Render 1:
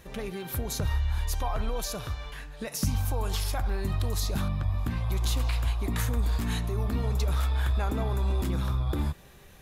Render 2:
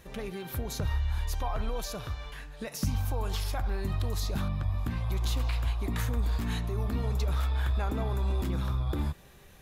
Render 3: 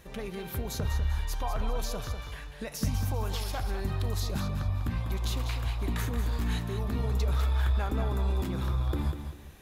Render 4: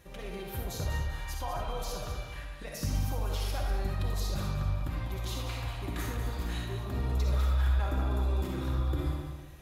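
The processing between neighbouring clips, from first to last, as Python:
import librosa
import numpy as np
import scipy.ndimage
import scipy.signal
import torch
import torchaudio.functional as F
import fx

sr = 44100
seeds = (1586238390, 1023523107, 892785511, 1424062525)

y1 = fx.dynamic_eq(x, sr, hz=9600.0, q=0.73, threshold_db=-52.0, ratio=4.0, max_db=-5)
y1 = y1 * librosa.db_to_amplitude(-2.0)
y2 = fx.echo_feedback(y1, sr, ms=197, feedback_pct=31, wet_db=-8.5)
y3 = fx.notch_comb(y2, sr, f0_hz=220.0)
y3 = fx.rev_freeverb(y3, sr, rt60_s=0.74, hf_ratio=0.6, predelay_ms=20, drr_db=0.0)
y3 = y3 * librosa.db_to_amplitude(-3.0)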